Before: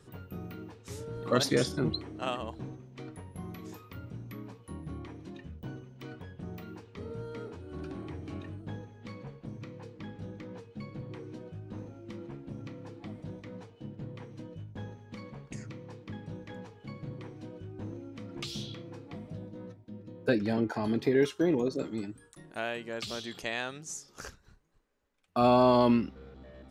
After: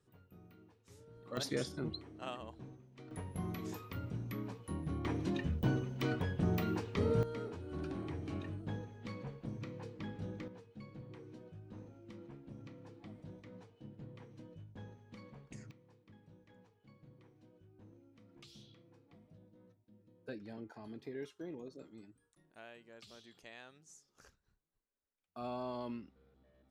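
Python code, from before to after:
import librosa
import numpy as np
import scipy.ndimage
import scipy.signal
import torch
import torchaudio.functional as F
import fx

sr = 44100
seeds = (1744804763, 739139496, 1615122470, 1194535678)

y = fx.gain(x, sr, db=fx.steps((0.0, -17.5), (1.37, -10.0), (3.11, 1.5), (5.05, 9.0), (7.23, -1.0), (10.48, -9.0), (15.71, -19.0)))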